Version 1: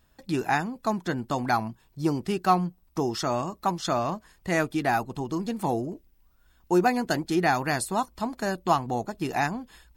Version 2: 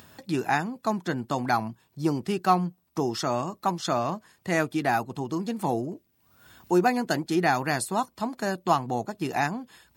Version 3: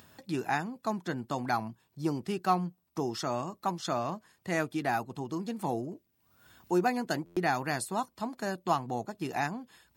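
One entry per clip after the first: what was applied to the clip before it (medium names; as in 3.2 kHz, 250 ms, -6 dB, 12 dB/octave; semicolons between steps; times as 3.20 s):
high-pass 94 Hz 24 dB/octave; upward compressor, threshold -39 dBFS
buffer glitch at 7.25 s, samples 512, times 9; trim -5.5 dB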